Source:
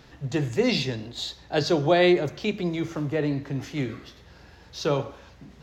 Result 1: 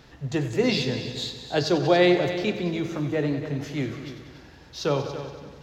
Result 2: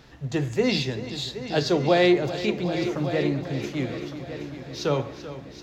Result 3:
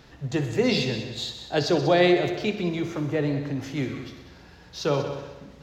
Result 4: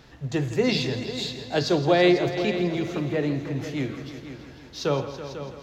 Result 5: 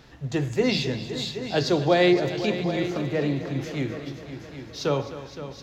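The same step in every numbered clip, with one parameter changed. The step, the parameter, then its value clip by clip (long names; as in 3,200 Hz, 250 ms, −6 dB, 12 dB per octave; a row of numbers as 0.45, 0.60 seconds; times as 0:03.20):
echo machine with several playback heads, delay time: 94, 386, 63, 165, 258 milliseconds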